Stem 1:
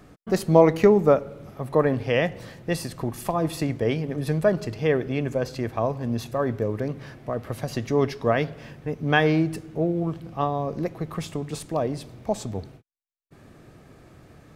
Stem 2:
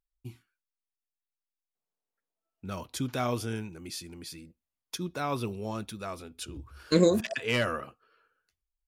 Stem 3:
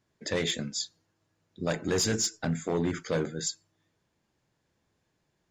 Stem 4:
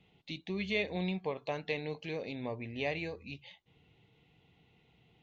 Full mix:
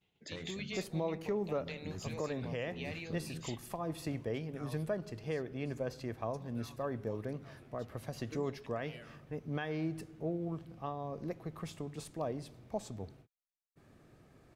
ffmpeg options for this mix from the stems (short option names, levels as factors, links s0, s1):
-filter_complex "[0:a]adelay=450,volume=0.251[s0];[1:a]asplit=2[s1][s2];[s2]afreqshift=-2.9[s3];[s1][s3]amix=inputs=2:normalize=1,adelay=1400,volume=0.15[s4];[2:a]asubboost=boost=10:cutoff=220,acompressor=threshold=0.0447:ratio=5,volume=0.2[s5];[3:a]agate=range=0.0224:threshold=0.00126:ratio=3:detection=peak,highshelf=f=3400:g=9,volume=1.06[s6];[s4][s6]amix=inputs=2:normalize=0,tremolo=f=1.7:d=0.69,acompressor=threshold=0.00708:ratio=2.5,volume=1[s7];[s0][s5][s7]amix=inputs=3:normalize=0,alimiter=level_in=1.19:limit=0.0631:level=0:latency=1:release=343,volume=0.841"